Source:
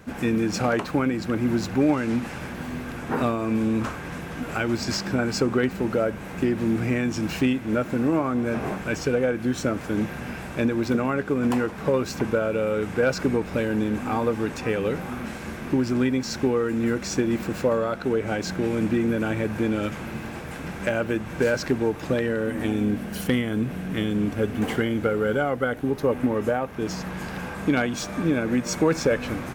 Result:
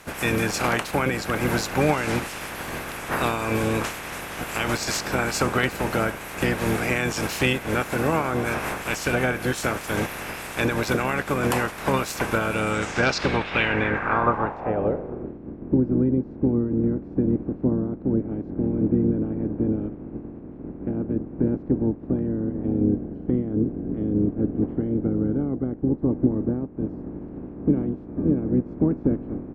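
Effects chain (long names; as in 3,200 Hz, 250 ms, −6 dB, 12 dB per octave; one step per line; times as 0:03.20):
ceiling on every frequency bin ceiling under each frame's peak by 18 dB
low-pass filter sweep 12,000 Hz → 290 Hz, 0:12.44–0:15.41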